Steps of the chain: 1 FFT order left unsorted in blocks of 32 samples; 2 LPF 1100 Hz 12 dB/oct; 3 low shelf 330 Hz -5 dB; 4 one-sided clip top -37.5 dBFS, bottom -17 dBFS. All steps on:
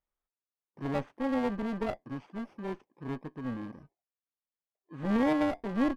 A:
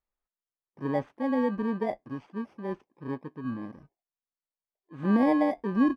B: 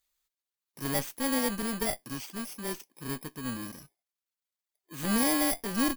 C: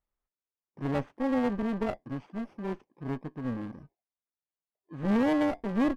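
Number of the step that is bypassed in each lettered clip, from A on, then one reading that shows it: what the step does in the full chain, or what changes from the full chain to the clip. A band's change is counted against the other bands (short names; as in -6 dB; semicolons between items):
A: 4, distortion -7 dB; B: 2, 4 kHz band +13.5 dB; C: 3, 125 Hz band +2.5 dB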